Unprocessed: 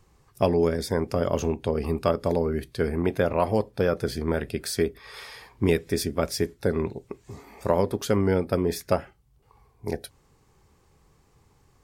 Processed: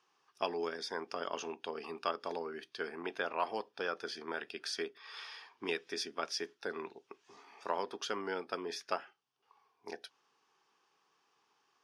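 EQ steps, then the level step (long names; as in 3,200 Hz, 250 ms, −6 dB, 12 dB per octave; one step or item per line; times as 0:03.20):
high-frequency loss of the air 240 metres
loudspeaker in its box 270–9,500 Hz, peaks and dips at 560 Hz −8 dB, 2,100 Hz −10 dB, 4,100 Hz −8 dB, 7,600 Hz −10 dB
first difference
+12.5 dB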